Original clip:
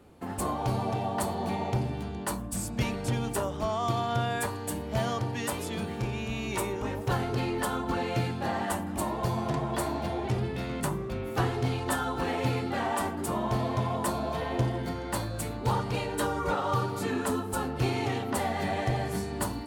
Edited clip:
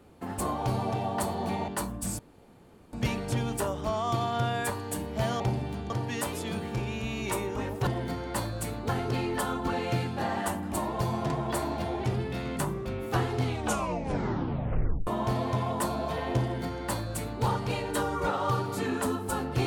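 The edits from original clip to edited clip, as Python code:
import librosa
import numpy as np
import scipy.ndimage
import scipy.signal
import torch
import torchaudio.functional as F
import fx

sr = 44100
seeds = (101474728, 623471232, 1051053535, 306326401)

y = fx.edit(x, sr, fx.move(start_s=1.68, length_s=0.5, to_s=5.16),
    fx.insert_room_tone(at_s=2.69, length_s=0.74),
    fx.tape_stop(start_s=11.65, length_s=1.66),
    fx.duplicate(start_s=14.65, length_s=1.02, to_s=7.13), tone=tone)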